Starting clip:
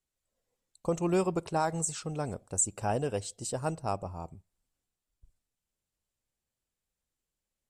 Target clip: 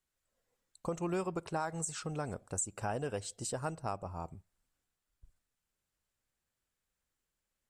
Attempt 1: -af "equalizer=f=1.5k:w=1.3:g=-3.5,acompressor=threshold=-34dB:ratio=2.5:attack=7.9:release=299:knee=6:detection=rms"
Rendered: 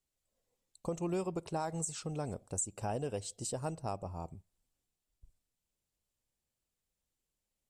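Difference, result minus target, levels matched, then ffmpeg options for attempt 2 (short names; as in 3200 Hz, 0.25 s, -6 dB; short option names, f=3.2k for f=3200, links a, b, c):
2000 Hz band -6.5 dB
-af "equalizer=f=1.5k:w=1.3:g=6,acompressor=threshold=-34dB:ratio=2.5:attack=7.9:release=299:knee=6:detection=rms"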